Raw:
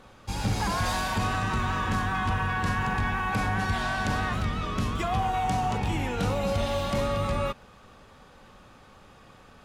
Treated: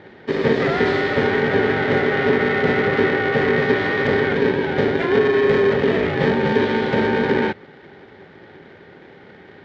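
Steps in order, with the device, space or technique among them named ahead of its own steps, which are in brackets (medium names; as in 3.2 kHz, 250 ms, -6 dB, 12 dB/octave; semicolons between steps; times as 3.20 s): treble shelf 9.2 kHz +11.5 dB; ring modulator pedal into a guitar cabinet (polarity switched at an audio rate 340 Hz; cabinet simulation 81–3400 Hz, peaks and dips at 94 Hz +3 dB, 170 Hz +5 dB, 400 Hz +8 dB, 1.1 kHz -10 dB, 1.9 kHz +6 dB, 2.7 kHz -7 dB); trim +7 dB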